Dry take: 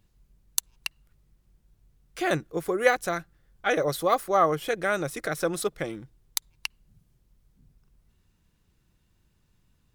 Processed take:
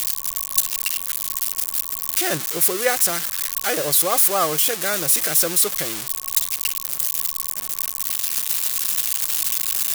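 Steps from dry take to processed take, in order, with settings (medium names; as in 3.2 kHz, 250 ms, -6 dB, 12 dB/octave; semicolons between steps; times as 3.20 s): zero-crossing glitches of -11 dBFS; whistle 1.1 kHz -48 dBFS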